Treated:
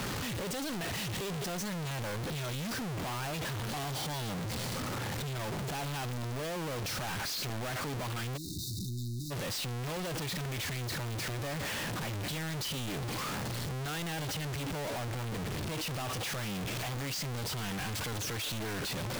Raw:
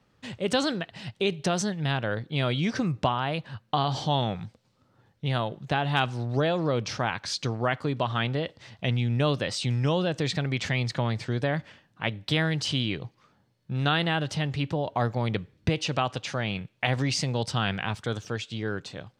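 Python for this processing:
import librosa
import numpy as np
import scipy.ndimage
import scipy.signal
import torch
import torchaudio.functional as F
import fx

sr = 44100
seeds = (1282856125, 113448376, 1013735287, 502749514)

y = np.sign(x) * np.sqrt(np.mean(np.square(x)))
y = fx.brickwall_bandstop(y, sr, low_hz=390.0, high_hz=3600.0, at=(8.36, 9.3), fade=0.02)
y = y * librosa.db_to_amplitude(-7.5)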